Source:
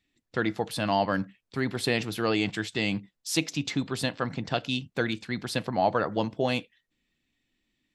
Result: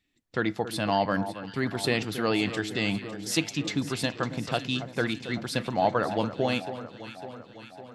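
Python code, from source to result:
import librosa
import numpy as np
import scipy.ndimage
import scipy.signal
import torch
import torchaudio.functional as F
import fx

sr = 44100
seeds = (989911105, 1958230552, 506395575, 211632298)

y = fx.echo_alternate(x, sr, ms=277, hz=1400.0, feedback_pct=77, wet_db=-11.0)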